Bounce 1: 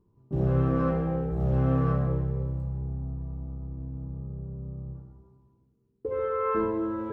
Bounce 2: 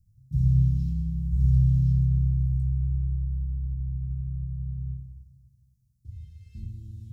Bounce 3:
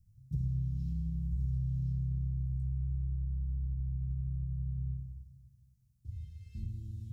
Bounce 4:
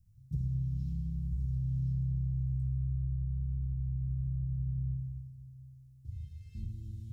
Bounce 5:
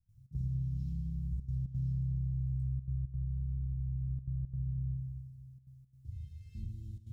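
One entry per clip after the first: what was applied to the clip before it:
inverse Chebyshev band-stop 480–1300 Hz, stop band 80 dB; trim +8.5 dB
compression 5:1, threshold -30 dBFS, peak gain reduction 13 dB; trim -1.5 dB
Schroeder reverb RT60 3.6 s, combs from 26 ms, DRR 10 dB
trance gate ".xx.xxxxxxxxxxxx" 172 bpm -12 dB; trim -1.5 dB

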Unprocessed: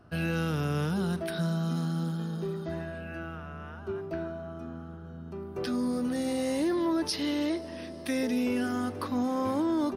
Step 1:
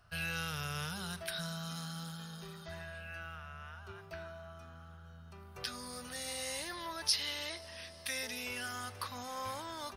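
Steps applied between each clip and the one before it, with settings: amplifier tone stack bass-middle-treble 10-0-10; trim +3.5 dB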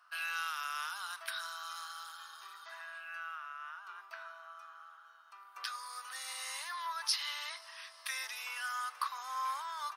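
ladder high-pass 990 Hz, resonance 60%; trim +8.5 dB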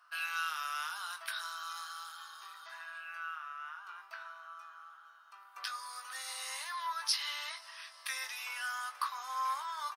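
doubling 19 ms -8 dB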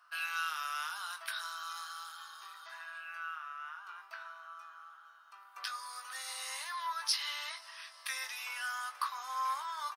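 hard clipper -20.5 dBFS, distortion -38 dB

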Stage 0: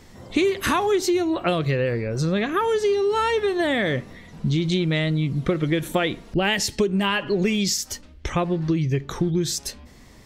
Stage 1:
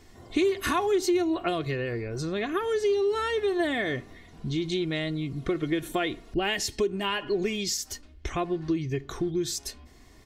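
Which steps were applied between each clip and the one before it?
comb 2.8 ms, depth 51%; trim -6.5 dB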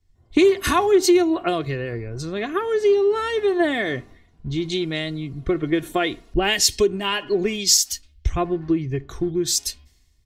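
three bands expanded up and down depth 100%; trim +6 dB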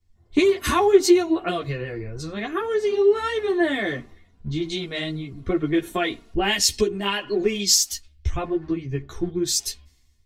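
three-phase chorus; trim +1.5 dB

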